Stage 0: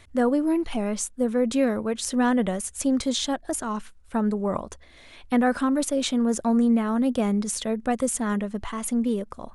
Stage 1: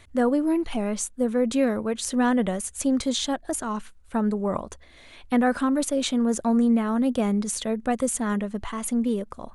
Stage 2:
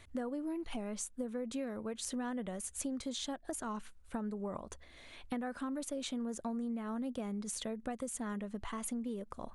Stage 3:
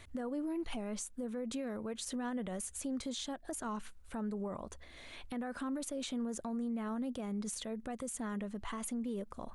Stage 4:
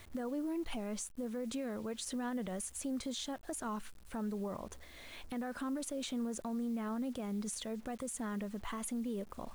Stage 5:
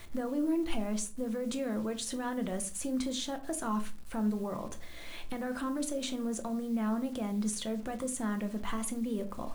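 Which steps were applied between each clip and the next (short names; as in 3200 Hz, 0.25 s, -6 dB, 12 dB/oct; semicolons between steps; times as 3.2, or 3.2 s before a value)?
notch 5300 Hz, Q 19
compressor 6:1, threshold -31 dBFS, peak gain reduction 13.5 dB; gain -5.5 dB
limiter -34.5 dBFS, peak gain reduction 10.5 dB; gain +3 dB
requantised 10-bit, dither none
reverb RT60 0.40 s, pre-delay 6 ms, DRR 7 dB; gain +4 dB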